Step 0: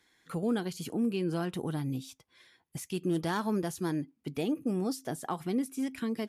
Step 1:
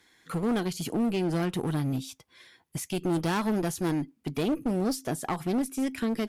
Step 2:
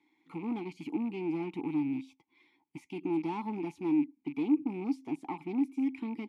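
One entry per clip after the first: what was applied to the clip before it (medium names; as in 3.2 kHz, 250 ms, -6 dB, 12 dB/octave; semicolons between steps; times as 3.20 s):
one-sided clip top -34.5 dBFS, bottom -25 dBFS; trim +6 dB
rattle on loud lows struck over -37 dBFS, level -33 dBFS; vowel filter u; trim +4.5 dB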